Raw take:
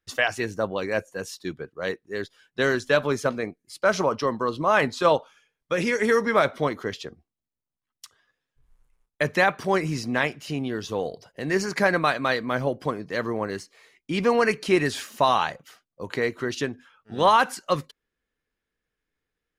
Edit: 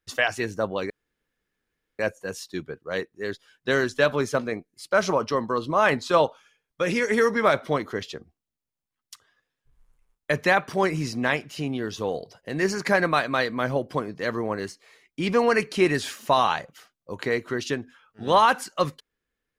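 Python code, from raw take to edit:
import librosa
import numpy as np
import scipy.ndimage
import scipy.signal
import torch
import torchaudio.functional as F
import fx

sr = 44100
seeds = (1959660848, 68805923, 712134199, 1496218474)

y = fx.edit(x, sr, fx.insert_room_tone(at_s=0.9, length_s=1.09), tone=tone)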